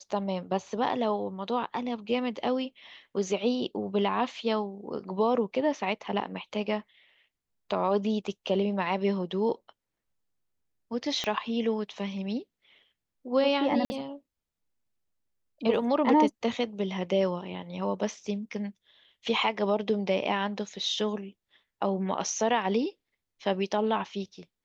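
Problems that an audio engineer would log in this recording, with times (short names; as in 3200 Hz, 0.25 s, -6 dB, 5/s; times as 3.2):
11.24 pop -16 dBFS
13.85–13.9 gap 50 ms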